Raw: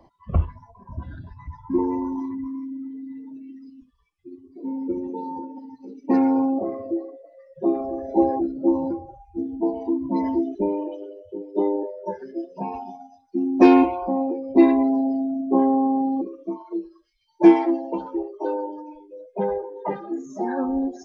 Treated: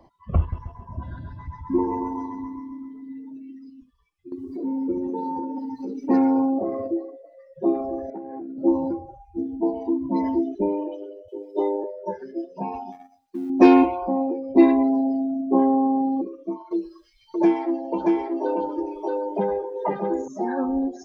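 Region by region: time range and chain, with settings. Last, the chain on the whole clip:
0:00.39–0:03.09: parametric band 760 Hz +3 dB 0.33 octaves + notch filter 2,300 Hz, Q 24 + repeating echo 133 ms, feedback 47%, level −6 dB
0:04.32–0:06.88: parametric band 2,700 Hz −4 dB 0.68 octaves + upward compression, threshold −21 dBFS
0:08.10–0:08.58: downward compressor 12 to 1, threshold −24 dBFS + loudspeaker in its box 200–2,200 Hz, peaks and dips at 350 Hz −7 dB, 560 Hz −8 dB, 830 Hz −6 dB, 1,200 Hz −10 dB
0:11.28–0:11.84: high-pass filter 330 Hz 24 dB per octave + high-shelf EQ 2,700 Hz +9.5 dB
0:12.92–0:13.50: mu-law and A-law mismatch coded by A + downward compressor 1.5 to 1, threshold −35 dBFS
0:16.71–0:20.28: single-tap delay 629 ms −5.5 dB + multiband upward and downward compressor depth 70%
whole clip: no processing

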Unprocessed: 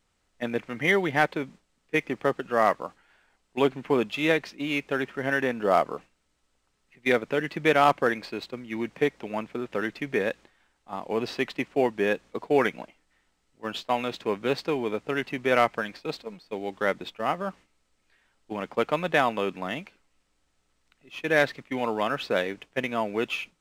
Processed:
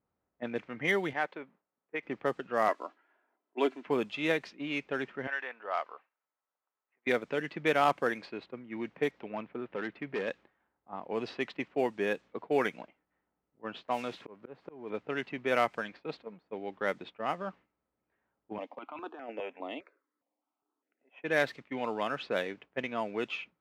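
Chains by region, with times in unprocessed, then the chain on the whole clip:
0:01.13–0:02.03: high-pass filter 680 Hz 6 dB per octave + parametric band 10,000 Hz −12 dB 2.7 octaves
0:02.68–0:03.87: high-pass filter 250 Hz 24 dB per octave + high-shelf EQ 12,000 Hz −9 dB + comb filter 3 ms, depth 42%
0:05.27–0:07.07: high-pass filter 940 Hz + high-frequency loss of the air 140 metres
0:09.11–0:10.28: low-pass filter 4,000 Hz + hard clipping −22.5 dBFS
0:13.88–0:14.90: spike at every zero crossing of −26.5 dBFS + high-shelf EQ 4,400 Hz −11.5 dB + volume swells 356 ms
0:18.58–0:21.24: Chebyshev high-pass filter 270 Hz, order 4 + compressor whose output falls as the input rises −28 dBFS + step-sequenced phaser 4.9 Hz 380–5,600 Hz
whole clip: high-pass filter 75 Hz; low-pass that shuts in the quiet parts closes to 1,000 Hz, open at −20 dBFS; low-shelf EQ 130 Hz −3.5 dB; level −6 dB

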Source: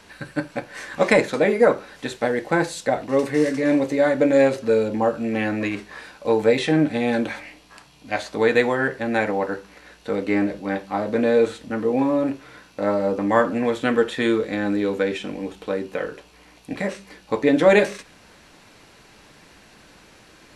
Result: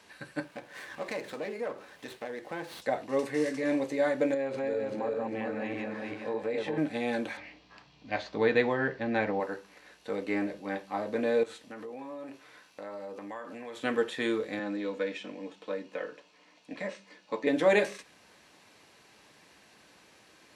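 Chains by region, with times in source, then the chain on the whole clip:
0:00.44–0:02.82: downward compressor 2 to 1, threshold −30 dBFS + windowed peak hold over 5 samples
0:04.34–0:06.78: feedback delay that plays each chunk backwards 200 ms, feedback 57%, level −1 dB + low-pass filter 2,400 Hz 6 dB per octave + downward compressor 2.5 to 1, threshold −22 dBFS
0:07.37–0:09.40: low-pass filter 5,300 Hz 24 dB per octave + low-shelf EQ 200 Hz +11 dB
0:11.43–0:13.84: low-shelf EQ 390 Hz −7.5 dB + downward compressor 5 to 1, threshold −29 dBFS
0:14.59–0:17.47: three-way crossover with the lows and the highs turned down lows −15 dB, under 160 Hz, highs −21 dB, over 7,700 Hz + notch comb filter 390 Hz
whole clip: high-pass filter 69 Hz; low-shelf EQ 230 Hz −7.5 dB; notch filter 1,400 Hz, Q 14; level −7.5 dB

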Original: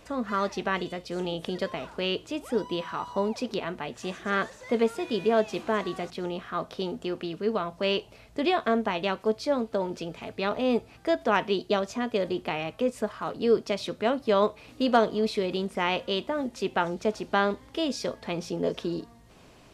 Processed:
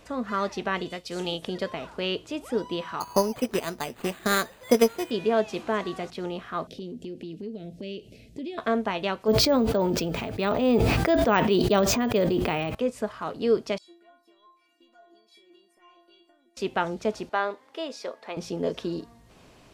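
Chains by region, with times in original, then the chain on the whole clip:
0:00.92–0:01.42: high-shelf EQ 2,100 Hz +9.5 dB + expander for the loud parts, over −45 dBFS
0:03.00–0:05.11: transient designer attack +8 dB, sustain −3 dB + bad sample-rate conversion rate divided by 8×, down none, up hold
0:06.67–0:08.58: Butterworth band-reject 1,100 Hz, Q 0.59 + parametric band 220 Hz +8.5 dB 2 octaves + downward compressor 3 to 1, threshold −37 dBFS
0:09.28–0:12.75: low-shelf EQ 420 Hz +5.5 dB + bad sample-rate conversion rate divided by 2×, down none, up hold + level that may fall only so fast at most 21 dB per second
0:13.78–0:16.57: high-pass filter 230 Hz 24 dB per octave + downward compressor 16 to 1, threshold −32 dBFS + stiff-string resonator 340 Hz, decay 0.54 s, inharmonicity 0.008
0:17.29–0:18.37: high-pass filter 490 Hz + high-shelf EQ 2,800 Hz −8.5 dB + notch filter 3,200 Hz, Q 28
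whole clip: no processing

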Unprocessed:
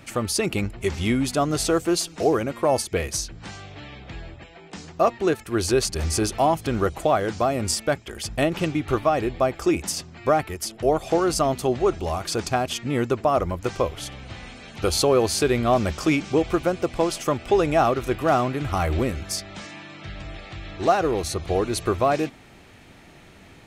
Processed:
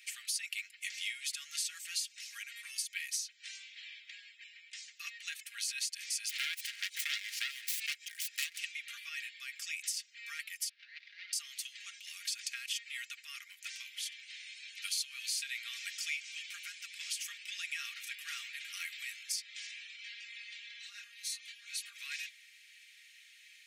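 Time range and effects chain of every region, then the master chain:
0:06.29–0:08.59: phase distortion by the signal itself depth 0.88 ms + background raised ahead of every attack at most 81 dB per second
0:10.69–0:11.33: running median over 41 samples + Butterworth low-pass 4,800 Hz + compressor whose output falls as the input rises −28 dBFS
0:19.96–0:21.96: comb filter 4.3 ms, depth 88% + downward compressor 4 to 1, threshold −25 dBFS + micro pitch shift up and down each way 18 cents
whole clip: Butterworth high-pass 1,900 Hz 48 dB per octave; comb filter 4.3 ms, depth 56%; downward compressor 3 to 1, threshold −31 dBFS; level −4 dB

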